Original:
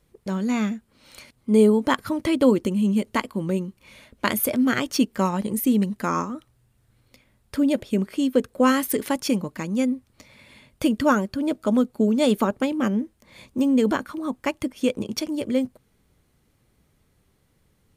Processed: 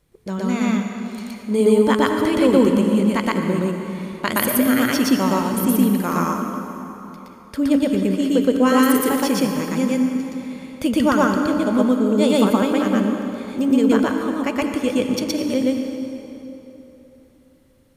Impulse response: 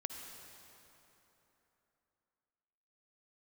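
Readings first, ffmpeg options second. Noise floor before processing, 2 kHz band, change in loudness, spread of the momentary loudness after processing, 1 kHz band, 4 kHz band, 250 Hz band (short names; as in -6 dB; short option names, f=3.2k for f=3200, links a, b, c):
-66 dBFS, +5.0 dB, +4.0 dB, 14 LU, +5.0 dB, +4.5 dB, +5.0 dB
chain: -filter_complex "[0:a]bandreject=f=215:t=h:w=4,bandreject=f=430:t=h:w=4,bandreject=f=645:t=h:w=4,bandreject=f=860:t=h:w=4,bandreject=f=1.075k:t=h:w=4,bandreject=f=1.29k:t=h:w=4,bandreject=f=1.505k:t=h:w=4,bandreject=f=1.72k:t=h:w=4,bandreject=f=1.935k:t=h:w=4,bandreject=f=2.15k:t=h:w=4,bandreject=f=2.365k:t=h:w=4,bandreject=f=2.58k:t=h:w=4,bandreject=f=2.795k:t=h:w=4,bandreject=f=3.01k:t=h:w=4,bandreject=f=3.225k:t=h:w=4,bandreject=f=3.44k:t=h:w=4,bandreject=f=3.655k:t=h:w=4,bandreject=f=3.87k:t=h:w=4,bandreject=f=4.085k:t=h:w=4,bandreject=f=4.3k:t=h:w=4,bandreject=f=4.515k:t=h:w=4,bandreject=f=4.73k:t=h:w=4,bandreject=f=4.945k:t=h:w=4,bandreject=f=5.16k:t=h:w=4,bandreject=f=5.375k:t=h:w=4,bandreject=f=5.59k:t=h:w=4,bandreject=f=5.805k:t=h:w=4,bandreject=f=6.02k:t=h:w=4,bandreject=f=6.235k:t=h:w=4,bandreject=f=6.45k:t=h:w=4,bandreject=f=6.665k:t=h:w=4,bandreject=f=6.88k:t=h:w=4,bandreject=f=7.095k:t=h:w=4,bandreject=f=7.31k:t=h:w=4,asplit=2[a][b];[1:a]atrim=start_sample=2205,adelay=119[c];[b][c]afir=irnorm=-1:irlink=0,volume=4dB[d];[a][d]amix=inputs=2:normalize=0"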